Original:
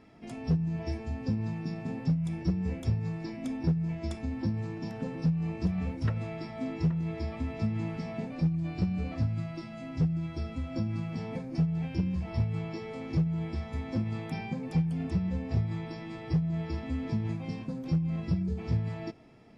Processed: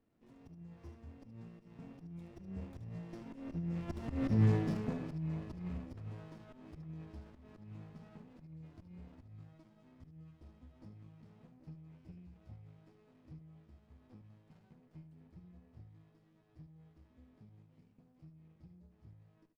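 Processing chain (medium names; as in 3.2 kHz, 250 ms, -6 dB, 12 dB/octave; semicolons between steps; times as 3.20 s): Doppler pass-by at 4.38 s, 12 m/s, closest 2 m; slow attack 152 ms; in parallel at -6 dB: saturation -37.5 dBFS, distortion -10 dB; on the sum: delay 74 ms -11.5 dB; sliding maximum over 33 samples; trim +5.5 dB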